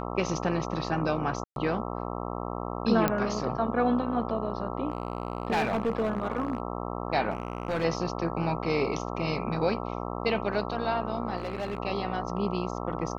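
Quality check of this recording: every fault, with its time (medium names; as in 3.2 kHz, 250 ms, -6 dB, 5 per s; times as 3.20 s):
buzz 60 Hz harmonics 22 -34 dBFS
1.44–1.56 s: dropout 122 ms
3.08 s: pop -10 dBFS
4.90–6.60 s: clipped -22.5 dBFS
7.30–7.85 s: clipped -24.5 dBFS
11.38–11.78 s: clipped -27.5 dBFS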